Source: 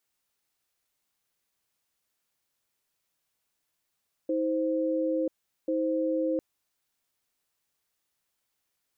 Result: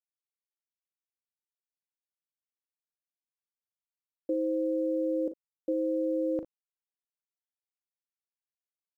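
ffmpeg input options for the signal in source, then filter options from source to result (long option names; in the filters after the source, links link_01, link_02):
-f lavfi -i "aevalsrc='0.0422*(sin(2*PI*319*t)+sin(2*PI*521*t))*clip(min(mod(t,1.39),0.99-mod(t,1.39))/0.005,0,1)':duration=2.1:sample_rate=44100"
-filter_complex "[0:a]aeval=exprs='val(0)*gte(abs(val(0)),0.00158)':channel_layout=same,asplit=2[link_01][link_02];[link_02]aecho=0:1:39|57:0.282|0.168[link_03];[link_01][link_03]amix=inputs=2:normalize=0"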